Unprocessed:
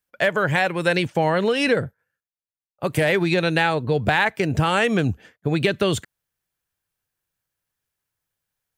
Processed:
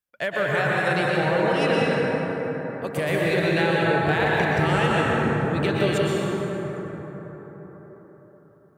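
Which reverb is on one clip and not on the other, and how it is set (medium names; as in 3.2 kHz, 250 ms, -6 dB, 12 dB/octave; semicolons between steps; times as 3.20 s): plate-style reverb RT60 4.9 s, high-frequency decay 0.35×, pre-delay 105 ms, DRR -5.5 dB; trim -7.5 dB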